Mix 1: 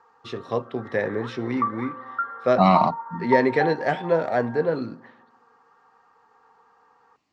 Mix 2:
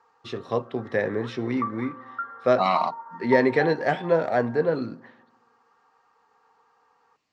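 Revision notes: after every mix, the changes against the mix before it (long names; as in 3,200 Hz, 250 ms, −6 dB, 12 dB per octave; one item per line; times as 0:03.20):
second voice: add high-pass filter 1,100 Hz 6 dB per octave
background −5.0 dB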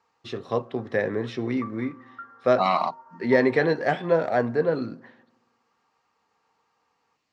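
background −9.0 dB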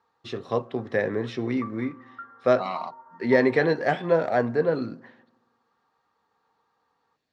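second voice −9.0 dB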